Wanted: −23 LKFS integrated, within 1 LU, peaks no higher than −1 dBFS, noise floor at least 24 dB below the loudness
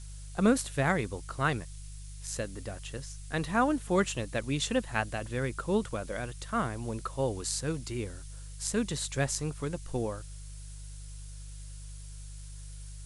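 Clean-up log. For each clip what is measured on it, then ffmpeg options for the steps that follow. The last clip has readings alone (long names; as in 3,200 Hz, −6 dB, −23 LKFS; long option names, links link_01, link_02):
mains hum 50 Hz; hum harmonics up to 150 Hz; level of the hum −41 dBFS; background noise floor −44 dBFS; target noise floor −56 dBFS; integrated loudness −32.0 LKFS; sample peak −13.0 dBFS; target loudness −23.0 LKFS
→ -af "bandreject=frequency=50:width_type=h:width=4,bandreject=frequency=100:width_type=h:width=4,bandreject=frequency=150:width_type=h:width=4"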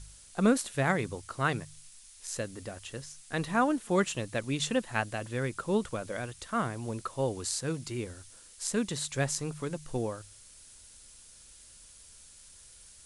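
mains hum none found; background noise floor −54 dBFS; target noise floor −56 dBFS
→ -af "afftdn=noise_reduction=6:noise_floor=-54"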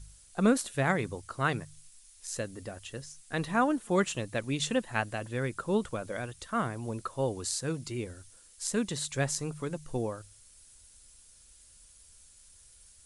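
background noise floor −58 dBFS; integrated loudness −32.5 LKFS; sample peak −13.0 dBFS; target loudness −23.0 LKFS
→ -af "volume=9.5dB"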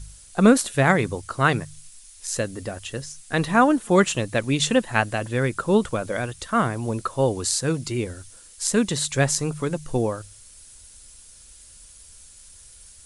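integrated loudness −23.0 LKFS; sample peak −3.5 dBFS; background noise floor −48 dBFS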